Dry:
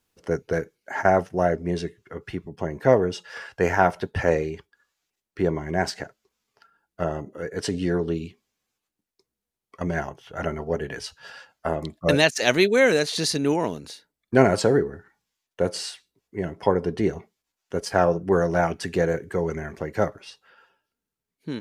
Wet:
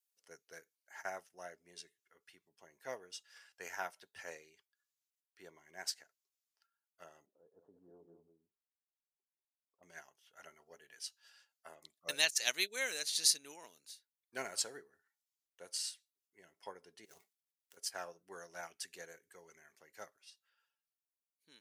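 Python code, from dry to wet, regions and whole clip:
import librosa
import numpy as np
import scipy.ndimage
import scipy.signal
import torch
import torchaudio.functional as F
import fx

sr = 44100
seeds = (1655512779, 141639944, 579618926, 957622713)

y = fx.chain(x, sr, fx.cvsd(bps=32000),
    fx.cheby2_lowpass(hz=2100.0, order=4, stop_db=50),
    fx.echo_single(ms=195, db=-7.0), at=(7.26, 9.83))
y = fx.chain(y, sr, fx.dead_time(dead_ms=0.092),
    fx.over_compress(threshold_db=-32.0, ratio=-1.0), at=(17.05, 17.77))
y = np.diff(y, prepend=0.0)
y = fx.upward_expand(y, sr, threshold_db=-49.0, expansion=1.5)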